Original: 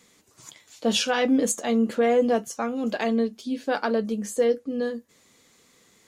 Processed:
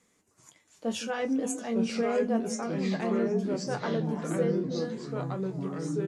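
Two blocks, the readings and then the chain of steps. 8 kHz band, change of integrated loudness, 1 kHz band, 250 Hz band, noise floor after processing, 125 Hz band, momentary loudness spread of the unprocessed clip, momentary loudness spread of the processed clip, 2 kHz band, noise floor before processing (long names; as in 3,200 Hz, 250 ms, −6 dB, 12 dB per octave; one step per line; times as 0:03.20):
−8.0 dB, −5.5 dB, −7.0 dB, −4.0 dB, −69 dBFS, can't be measured, 8 LU, 6 LU, −7.5 dB, −60 dBFS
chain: Butterworth low-pass 12,000 Hz 36 dB per octave
parametric band 3,900 Hz −8 dB 0.98 octaves
double-tracking delay 22 ms −11.5 dB
on a send: echo through a band-pass that steps 162 ms, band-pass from 270 Hz, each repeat 1.4 octaves, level −8 dB
on the sum: delay with pitch and tempo change per echo 745 ms, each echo −3 semitones, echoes 3
level −8.5 dB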